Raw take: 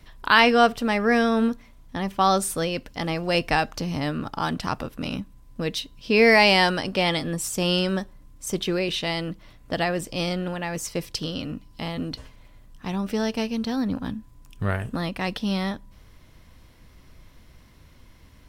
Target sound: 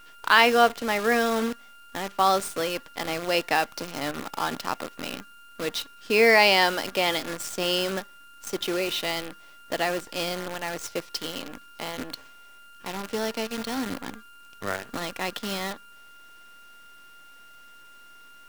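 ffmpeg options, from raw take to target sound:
ffmpeg -i in.wav -filter_complex "[0:a]acrossover=split=240 7900:gain=0.0708 1 0.251[link_01][link_02][link_03];[link_01][link_02][link_03]amix=inputs=3:normalize=0,aeval=exprs='val(0)+0.00708*sin(2*PI*1400*n/s)':channel_layout=same,acrusher=bits=6:dc=4:mix=0:aa=0.000001,volume=-1dB" out.wav

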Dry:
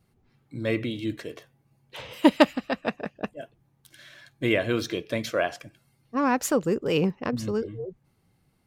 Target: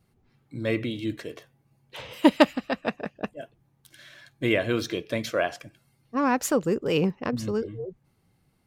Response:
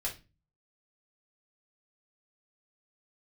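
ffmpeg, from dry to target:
-af anull

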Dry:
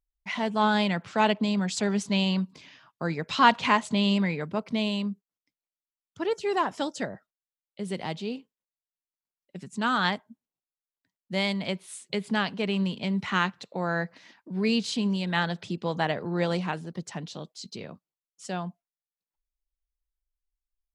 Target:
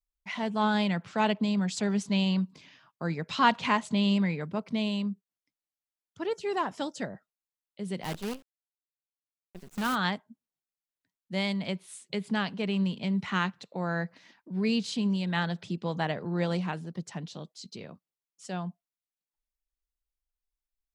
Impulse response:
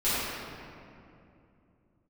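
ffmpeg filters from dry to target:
-filter_complex "[0:a]adynamicequalizer=threshold=0.01:dfrequency=170:dqfactor=1.5:tfrequency=170:tqfactor=1.5:attack=5:release=100:ratio=0.375:range=2:mode=boostabove:tftype=bell,asplit=3[link_01][link_02][link_03];[link_01]afade=type=out:start_time=8.03:duration=0.02[link_04];[link_02]acrusher=bits=6:dc=4:mix=0:aa=0.000001,afade=type=in:start_time=8.03:duration=0.02,afade=type=out:start_time=9.94:duration=0.02[link_05];[link_03]afade=type=in:start_time=9.94:duration=0.02[link_06];[link_04][link_05][link_06]amix=inputs=3:normalize=0,volume=-4dB"

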